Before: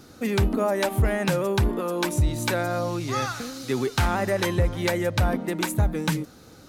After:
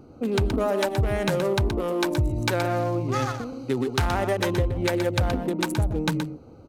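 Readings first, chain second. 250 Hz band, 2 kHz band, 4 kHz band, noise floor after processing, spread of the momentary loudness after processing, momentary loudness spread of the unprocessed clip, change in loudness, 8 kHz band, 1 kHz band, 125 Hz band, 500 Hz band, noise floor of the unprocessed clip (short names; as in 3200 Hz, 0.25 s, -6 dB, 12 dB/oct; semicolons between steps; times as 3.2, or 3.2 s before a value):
+0.5 dB, -1.5 dB, 0.0 dB, -47 dBFS, 4 LU, 4 LU, 0.0 dB, -3.5 dB, 0.0 dB, -0.5 dB, +0.5 dB, -49 dBFS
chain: Wiener smoothing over 25 samples; bell 190 Hz -4.5 dB 0.47 oct; compressor 4:1, threshold -23 dBFS, peak gain reduction 6 dB; on a send: echo 0.123 s -8 dB; on the sum: gain +3 dB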